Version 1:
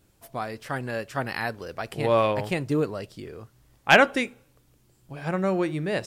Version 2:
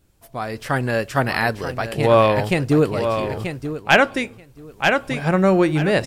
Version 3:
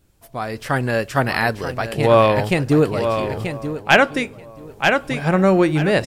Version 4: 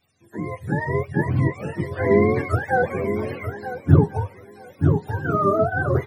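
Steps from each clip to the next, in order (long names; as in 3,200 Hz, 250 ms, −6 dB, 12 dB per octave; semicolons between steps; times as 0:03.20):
low-shelf EQ 65 Hz +9 dB; on a send: repeating echo 933 ms, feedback 22%, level −9.5 dB; on the sum: automatic gain control gain up to 10.5 dB; level −1 dB
slap from a distant wall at 240 metres, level −20 dB; level +1 dB
frequency axis turned over on the octave scale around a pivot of 480 Hz; level −3 dB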